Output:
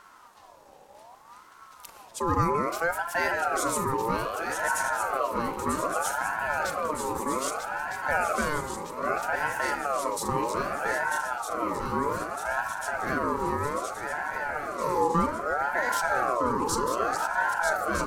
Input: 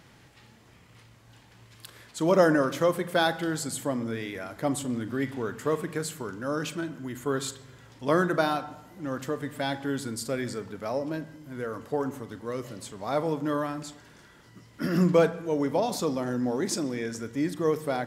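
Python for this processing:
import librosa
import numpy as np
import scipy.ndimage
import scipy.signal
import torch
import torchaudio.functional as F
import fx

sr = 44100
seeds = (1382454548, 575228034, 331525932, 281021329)

p1 = fx.peak_eq(x, sr, hz=2100.0, db=-12.0, octaves=2.3)
p2 = fx.over_compress(p1, sr, threshold_db=-33.0, ratio=-1.0)
p3 = p1 + F.gain(torch.from_numpy(p2), -1.0).numpy()
p4 = fx.echo_swing(p3, sr, ms=1258, ratio=3, feedback_pct=63, wet_db=-6.0)
y = fx.ring_lfo(p4, sr, carrier_hz=940.0, swing_pct=30, hz=0.63)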